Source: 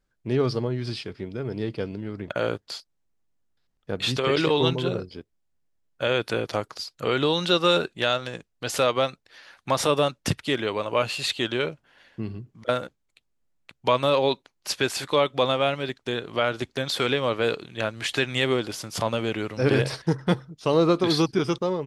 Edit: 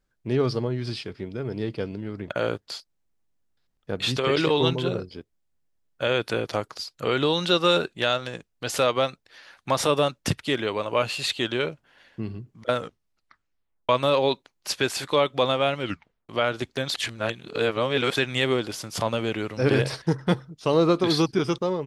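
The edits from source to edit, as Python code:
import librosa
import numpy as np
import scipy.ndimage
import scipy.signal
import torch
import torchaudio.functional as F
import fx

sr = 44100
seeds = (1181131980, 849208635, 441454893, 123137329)

y = fx.edit(x, sr, fx.tape_stop(start_s=12.74, length_s=1.15),
    fx.tape_stop(start_s=15.8, length_s=0.49),
    fx.reverse_span(start_s=16.94, length_s=1.22), tone=tone)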